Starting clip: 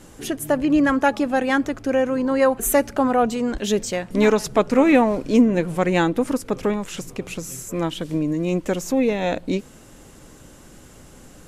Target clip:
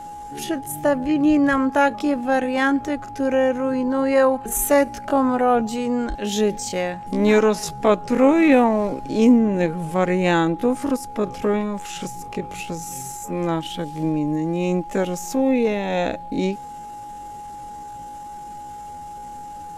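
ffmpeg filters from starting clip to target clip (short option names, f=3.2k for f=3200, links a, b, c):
-af "atempo=0.58,aeval=exprs='val(0)+0.0224*sin(2*PI*830*n/s)':c=same"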